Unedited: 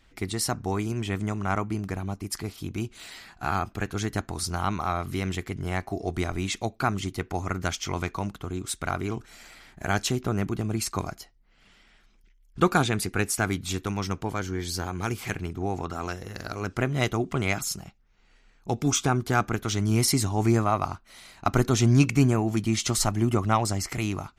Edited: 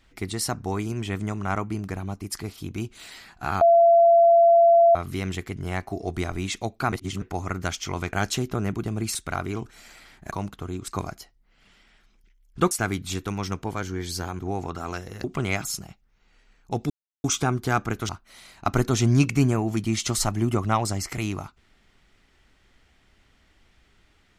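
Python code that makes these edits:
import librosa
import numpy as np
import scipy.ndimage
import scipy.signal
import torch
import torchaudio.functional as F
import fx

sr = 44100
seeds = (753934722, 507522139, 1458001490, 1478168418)

y = fx.edit(x, sr, fx.bleep(start_s=3.61, length_s=1.34, hz=679.0, db=-12.0),
    fx.reverse_span(start_s=6.92, length_s=0.3),
    fx.swap(start_s=8.13, length_s=0.57, other_s=9.86, other_length_s=1.02),
    fx.cut(start_s=12.71, length_s=0.59),
    fx.cut(start_s=14.98, length_s=0.56),
    fx.cut(start_s=16.39, length_s=0.82),
    fx.insert_silence(at_s=18.87, length_s=0.34),
    fx.cut(start_s=19.72, length_s=1.17), tone=tone)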